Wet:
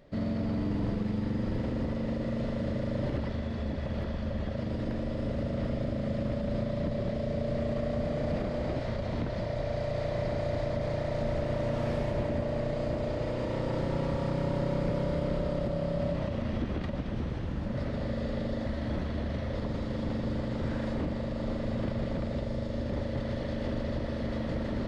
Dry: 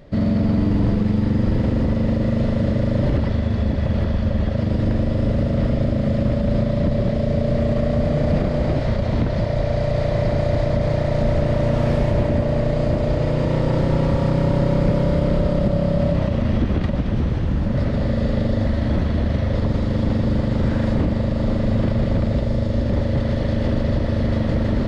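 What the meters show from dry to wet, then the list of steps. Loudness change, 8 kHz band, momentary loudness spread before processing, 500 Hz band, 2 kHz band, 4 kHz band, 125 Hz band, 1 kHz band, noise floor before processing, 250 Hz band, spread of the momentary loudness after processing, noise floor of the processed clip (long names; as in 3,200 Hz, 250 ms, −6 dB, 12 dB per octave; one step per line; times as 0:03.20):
−12.0 dB, can't be measured, 2 LU, −9.5 dB, −9.0 dB, −9.0 dB, −14.0 dB, −9.5 dB, −22 dBFS, −12.0 dB, 3 LU, −34 dBFS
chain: low-shelf EQ 210 Hz −5 dB
mains-hum notches 50/100/150/200 Hz
level −9 dB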